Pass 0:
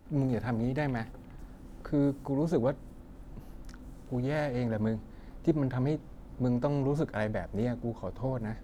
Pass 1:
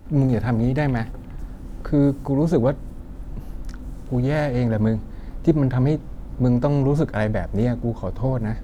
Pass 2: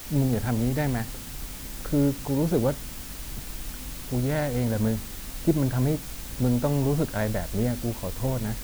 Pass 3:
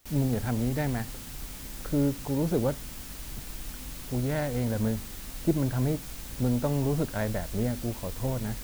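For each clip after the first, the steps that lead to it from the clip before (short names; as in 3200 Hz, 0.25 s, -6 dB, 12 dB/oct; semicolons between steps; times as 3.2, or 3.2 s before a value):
low shelf 140 Hz +7 dB; gain +8 dB
requantised 6-bit, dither triangular; gain -5 dB
gate with hold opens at -31 dBFS; gain -3 dB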